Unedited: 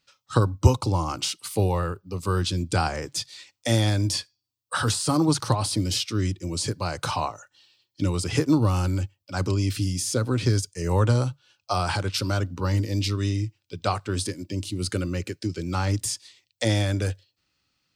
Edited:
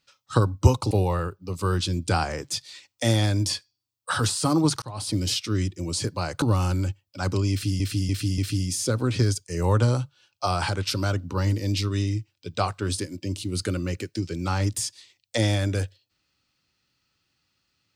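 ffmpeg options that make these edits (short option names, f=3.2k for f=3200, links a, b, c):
-filter_complex "[0:a]asplit=7[a][b][c][d][e][f][g];[a]atrim=end=0.912[h];[b]atrim=start=1.548:end=5.46,asetpts=PTS-STARTPTS,afade=t=out:st=3.908:d=0.004:c=hsin[i];[c]atrim=start=5.46:end=7.062,asetpts=PTS-STARTPTS,afade=t=in:d=0.36[j];[d]atrim=start=8.558:end=9.942[k];[e]atrim=start=9.648:end=9.942[l];[f]atrim=start=9.648:end=9.942[m];[g]atrim=start=9.648[n];[i][j]concat=n=2:v=0:a=1[o];[h][o]acrossfade=d=0.004:c1=hsin:c2=hsin[p];[p][k]acrossfade=d=0.004:c1=hsin:c2=hsin[q];[q][l]acrossfade=d=0.004:c1=hsin:c2=hsin[r];[r][m]acrossfade=d=0.004:c1=hsin:c2=hsin[s];[s][n]acrossfade=d=0.004:c1=hsin:c2=hsin"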